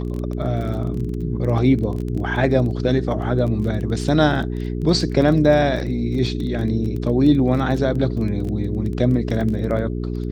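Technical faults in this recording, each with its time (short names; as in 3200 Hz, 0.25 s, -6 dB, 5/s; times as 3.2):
crackle 18/s -26 dBFS
hum 60 Hz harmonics 7 -25 dBFS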